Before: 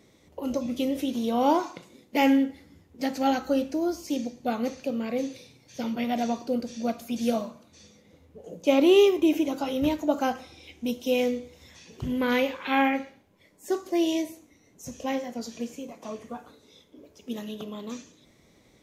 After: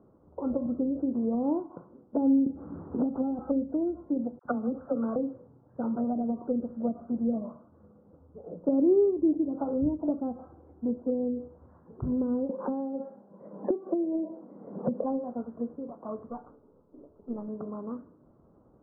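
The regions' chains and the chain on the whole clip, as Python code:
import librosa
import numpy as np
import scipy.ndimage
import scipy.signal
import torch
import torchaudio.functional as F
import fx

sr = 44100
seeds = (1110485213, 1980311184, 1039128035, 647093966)

y = fx.chain(x, sr, fx.resample_bad(factor=8, down='none', up='filtered'),
    fx.band_squash(depth_pct=100), at=(2.46, 3.39))
y = fx.chain(y, sr, fx.peak_eq(hz=1400.0, db=12.0, octaves=0.79),
    fx.dispersion(late='lows', ms=54.0, hz=850.0), at=(4.39, 5.16))
y = fx.chain(y, sr, fx.cabinet(low_hz=170.0, low_slope=24, high_hz=2300.0, hz=(200.0, 290.0, 530.0, 1300.0, 2100.0), db=(8, -5, 6, -5, 5)),
    fx.band_squash(depth_pct=100), at=(12.49, 15.04))
y = fx.chain(y, sr, fx.halfwave_gain(db=-3.0),
    fx.lowpass(hz=1400.0, slope=12), at=(16.29, 17.48))
y = fx.env_lowpass_down(y, sr, base_hz=340.0, full_db=-22.5)
y = scipy.signal.sosfilt(scipy.signal.butter(12, 1400.0, 'lowpass', fs=sr, output='sos'), y)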